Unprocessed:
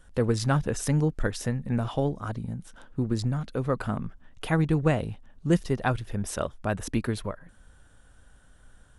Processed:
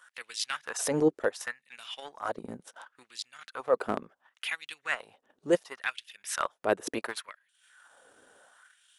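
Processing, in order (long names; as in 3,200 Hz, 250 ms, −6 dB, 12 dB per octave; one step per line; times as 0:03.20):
auto-filter high-pass sine 0.7 Hz 370–3,000 Hz
transient designer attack −7 dB, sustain −11 dB
level +3.5 dB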